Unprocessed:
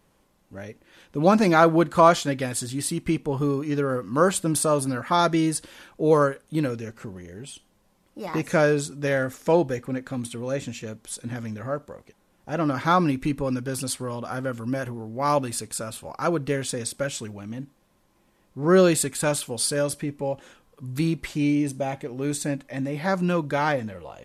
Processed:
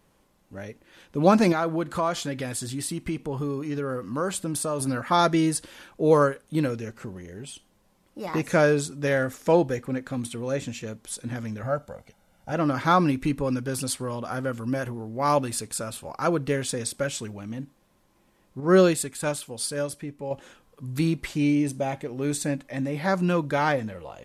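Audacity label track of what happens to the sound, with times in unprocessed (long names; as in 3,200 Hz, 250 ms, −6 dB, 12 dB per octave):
1.520000	4.800000	downward compressor 2 to 1, threshold −29 dBFS
11.630000	12.520000	comb filter 1.4 ms
18.600000	20.310000	expander for the loud parts, over −26 dBFS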